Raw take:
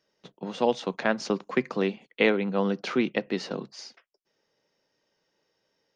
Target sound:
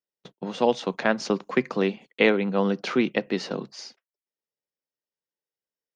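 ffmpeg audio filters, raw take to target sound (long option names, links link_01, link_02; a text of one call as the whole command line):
ffmpeg -i in.wav -af "agate=range=-27dB:threshold=-50dB:ratio=16:detection=peak,volume=2.5dB" out.wav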